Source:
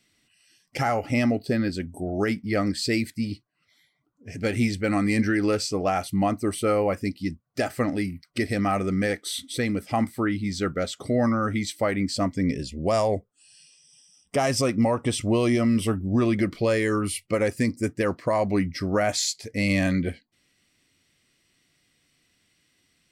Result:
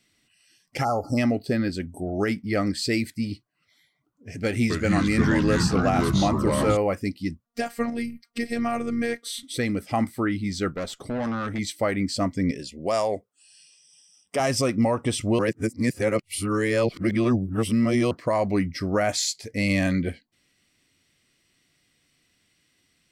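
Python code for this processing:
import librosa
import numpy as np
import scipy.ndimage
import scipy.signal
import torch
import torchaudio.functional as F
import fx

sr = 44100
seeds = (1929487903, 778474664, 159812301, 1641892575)

y = fx.spec_erase(x, sr, start_s=0.84, length_s=0.34, low_hz=1400.0, high_hz=4100.0)
y = fx.echo_pitch(y, sr, ms=251, semitones=-4, count=3, db_per_echo=-3.0, at=(4.45, 6.77))
y = fx.robotise(y, sr, hz=234.0, at=(7.45, 9.43))
y = fx.tube_stage(y, sr, drive_db=24.0, bias=0.55, at=(10.7, 11.59))
y = fx.highpass(y, sr, hz=360.0, slope=6, at=(12.51, 14.4))
y = fx.edit(y, sr, fx.reverse_span(start_s=15.39, length_s=2.72), tone=tone)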